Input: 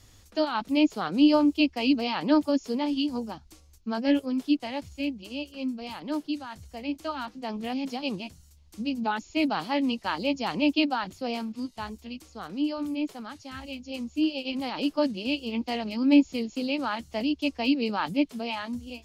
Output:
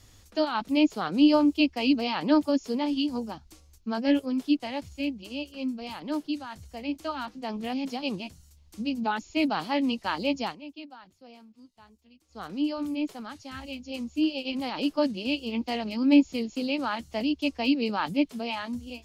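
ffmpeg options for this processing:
-filter_complex "[0:a]asplit=3[s0][s1][s2];[s0]atrim=end=10.56,asetpts=PTS-STARTPTS,afade=t=out:st=10.44:d=0.12:silence=0.112202[s3];[s1]atrim=start=10.56:end=12.28,asetpts=PTS-STARTPTS,volume=0.112[s4];[s2]atrim=start=12.28,asetpts=PTS-STARTPTS,afade=t=in:d=0.12:silence=0.112202[s5];[s3][s4][s5]concat=n=3:v=0:a=1"

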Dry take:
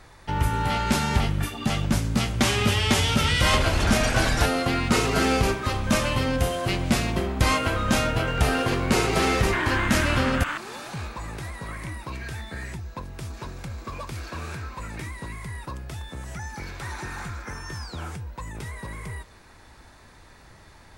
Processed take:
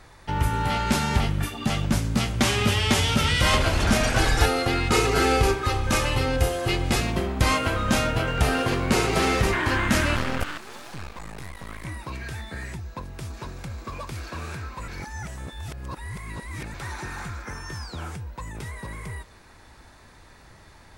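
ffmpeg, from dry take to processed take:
-filter_complex "[0:a]asettb=1/sr,asplit=3[s0][s1][s2];[s0]atrim=end=4.184[s3];[s1]atrim=start=4.18:end=7.01,asetpts=PTS-STARTPTS,afade=t=in:d=0.004:c=qsin,afade=t=out:st=2.826:d=0.004:c=qsin,aecho=1:1:2.4:0.55,atrim=end_sample=124803[s4];[s2]atrim=start=7.006[s5];[s3][s4]acrossfade=d=0.004:c1=hsin:c2=qsin[s6];[s6][s5]acrossfade=d=0.004:c1=qsin:c2=hsin,asettb=1/sr,asplit=3[s7][s8][s9];[s7]atrim=end=10.164[s10];[s8]atrim=start=10.16:end=11.85,asetpts=PTS-STARTPTS,afade=t=in:d=0.004:c=qsin,afade=t=out:st=1.686:d=0.004:c=qsin,aeval=exprs='max(val(0),0)':c=same[s11];[s9]atrim=start=11.846[s12];[s10][s11]acrossfade=d=0.004:c1=hsin:c2=qsin[s13];[s13][s12]acrossfade=d=0.004:c1=qsin:c2=hsin,asplit=3[s14][s15][s16];[s14]atrim=end=14.882[s17];[s15]atrim=start=14.878:end=16.742,asetpts=PTS-STARTPTS,areverse[s18];[s16]atrim=start=16.738[s19];[s17][s18]acrossfade=d=0.004:c1=hsin:c2=hsin[s20];[s20][s19]acrossfade=d=0.004:c1=hsin:c2=hsin"

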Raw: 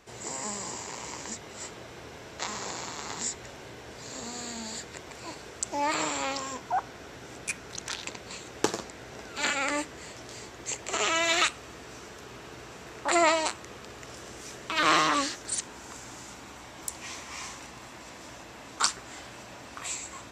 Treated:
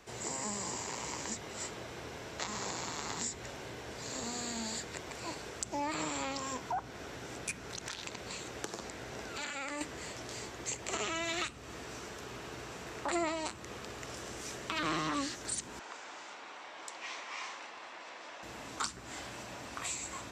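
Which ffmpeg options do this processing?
-filter_complex "[0:a]asettb=1/sr,asplit=3[s0][s1][s2];[s0]atrim=end=7.634[s3];[s1]atrim=start=7.63:end=9.81,asetpts=PTS-STARTPTS,afade=t=in:d=0.004:c=qsin,afade=t=out:st=2.176:d=0.004:c=qsin,acompressor=threshold=0.0141:ratio=3:attack=3.2:release=140:knee=1:detection=peak[s4];[s2]atrim=start=9.806[s5];[s3][s4]acrossfade=d=0.004:c1=hsin:c2=qsin[s6];[s6][s5]acrossfade=d=0.004:c1=qsin:c2=hsin,asettb=1/sr,asplit=3[s7][s8][s9];[s7]atrim=end=15.794[s10];[s8]atrim=start=15.79:end=18.43,asetpts=PTS-STARTPTS,afade=t=in:d=0.004:c=qsin,afade=t=out:st=2.636:d=0.004:c=qsin,highpass=530,lowpass=4000[s11];[s9]atrim=start=18.426[s12];[s10][s11]acrossfade=d=0.004:c1=hsin:c2=qsin[s13];[s13][s12]acrossfade=d=0.004:c1=qsin:c2=hsin,acrossover=split=300[s14][s15];[s15]acompressor=threshold=0.0178:ratio=4[s16];[s14][s16]amix=inputs=2:normalize=0"

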